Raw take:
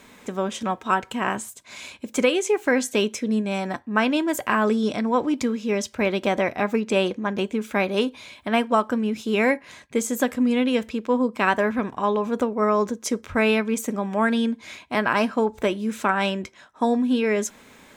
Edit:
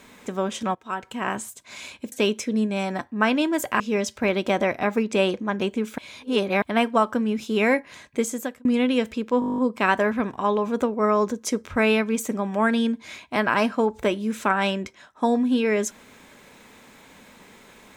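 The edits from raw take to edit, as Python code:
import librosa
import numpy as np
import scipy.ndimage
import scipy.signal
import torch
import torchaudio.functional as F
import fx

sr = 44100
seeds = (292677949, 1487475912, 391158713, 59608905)

y = fx.edit(x, sr, fx.fade_in_from(start_s=0.75, length_s=0.71, floor_db=-15.5),
    fx.cut(start_s=2.12, length_s=0.75),
    fx.cut(start_s=4.55, length_s=1.02),
    fx.reverse_span(start_s=7.75, length_s=0.64),
    fx.fade_out_span(start_s=9.96, length_s=0.46),
    fx.stutter(start_s=11.17, slice_s=0.02, count=10), tone=tone)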